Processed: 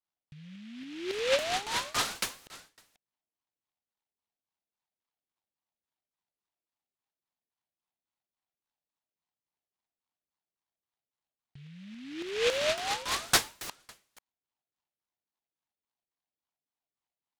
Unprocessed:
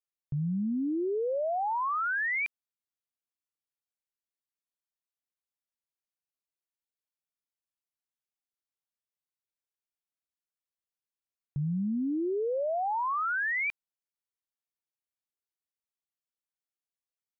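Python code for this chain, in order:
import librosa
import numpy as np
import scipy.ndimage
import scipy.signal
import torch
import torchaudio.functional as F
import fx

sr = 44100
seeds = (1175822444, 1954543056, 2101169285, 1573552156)

p1 = fx.wiener(x, sr, points=25)
p2 = fx.vibrato(p1, sr, rate_hz=0.83, depth_cents=68.0)
p3 = p2 + 0.63 * np.pad(p2, (int(1.0 * sr / 1000.0), 0))[:len(p2)]
p4 = fx.over_compress(p3, sr, threshold_db=-38.0, ratio=-1.0)
p5 = fx.tilt_eq(p4, sr, slope=2.5)
p6 = p5 + fx.echo_single(p5, sr, ms=488, db=-20.5, dry=0)
p7 = fx.filter_lfo_lowpass(p6, sr, shape='saw_down', hz=3.6, low_hz=440.0, high_hz=1600.0, q=3.6)
p8 = fx.dynamic_eq(p7, sr, hz=1000.0, q=2.0, threshold_db=-40.0, ratio=4.0, max_db=3)
y = fx.noise_mod_delay(p8, sr, seeds[0], noise_hz=2500.0, depth_ms=0.18)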